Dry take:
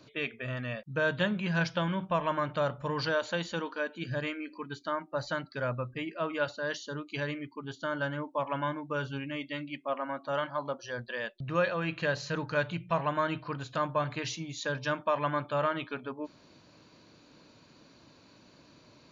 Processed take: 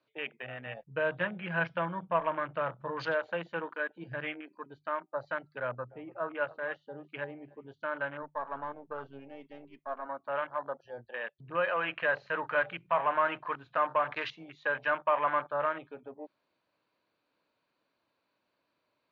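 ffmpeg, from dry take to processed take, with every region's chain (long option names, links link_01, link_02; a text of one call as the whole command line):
ffmpeg -i in.wav -filter_complex "[0:a]asettb=1/sr,asplit=3[link_01][link_02][link_03];[link_01]atrim=end=0.664[link_04];[link_02]atrim=start=0.66:end=4.41,asetpts=PTS-STARTPTS,afade=type=in:duration=0.004:curve=qsin,afade=type=out:start_time=3.746:duration=0.004:curve=qsin,lowshelf=frequency=74:gain=11,aecho=1:1:6.1:0.42,atrim=end_sample=165375[link_05];[link_03]atrim=start=4.406[link_06];[link_04][link_05]acrossfade=duration=0.004:curve1=hsin:curve2=qsin[link_07];[link_07][link_06]acrossfade=duration=0.004:curve1=qsin:curve2=hsin,asettb=1/sr,asplit=3[link_08][link_09][link_10];[link_08]atrim=end=5.604[link_11];[link_09]atrim=start=5.6:end=7.68,asetpts=PTS-STARTPTS,afade=type=in:duration=0.004:curve=qsin,afade=type=out:start_time=2.076:duration=0.004:curve=qsin,bass=frequency=250:gain=2,treble=frequency=4000:gain=-13,aecho=1:1:294:0.133,atrim=end_sample=91728[link_12];[link_10]atrim=start=7.676[link_13];[link_11][link_12]acrossfade=duration=0.004:curve1=hsin:curve2=qsin[link_14];[link_14][link_13]acrossfade=duration=0.004:curve1=qsin:curve2=hsin,asettb=1/sr,asplit=3[link_15][link_16][link_17];[link_15]atrim=end=8.224[link_18];[link_16]atrim=start=8.22:end=10.06,asetpts=PTS-STARTPTS,afade=type=in:duration=0.004:curve=qsin,afade=type=out:start_time=1.836:duration=0.004:curve=qsin,aeval=exprs='if(lt(val(0),0),0.447*val(0),val(0))':channel_layout=same,aecho=1:1:4.5:0.44,atrim=end_sample=81144[link_19];[link_17]atrim=start=10.056[link_20];[link_18][link_19]acrossfade=duration=0.004:curve1=hsin:curve2=qsin[link_21];[link_21][link_20]acrossfade=duration=0.004:curve1=qsin:curve2=hsin,asettb=1/sr,asplit=3[link_22][link_23][link_24];[link_22]atrim=end=11.684[link_25];[link_23]atrim=start=11.68:end=15.49,asetpts=PTS-STARTPTS,afade=type=in:duration=0.004:curve=qsin,afade=type=out:start_time=3.806:duration=0.004:curve=qsin,acrusher=bits=6:mode=log:mix=0:aa=0.000001,asplit=2[link_26][link_27];[link_27]highpass=frequency=720:poles=1,volume=13dB,asoftclip=type=tanh:threshold=-16dB[link_28];[link_26][link_28]amix=inputs=2:normalize=0,lowpass=frequency=2700:poles=1,volume=-6dB[link_29];[link_24]atrim=start=15.486[link_30];[link_25][link_29]acrossfade=duration=0.004:curve1=hsin:curve2=qsin[link_31];[link_31][link_30]acrossfade=duration=0.004:curve1=qsin:curve2=hsin,afwtdn=0.0141,acrossover=split=450 3800:gain=0.224 1 0.0631[link_32][link_33][link_34];[link_32][link_33][link_34]amix=inputs=3:normalize=0,bandreject=frequency=50:width_type=h:width=6,bandreject=frequency=100:width_type=h:width=6,bandreject=frequency=150:width_type=h:width=6" out.wav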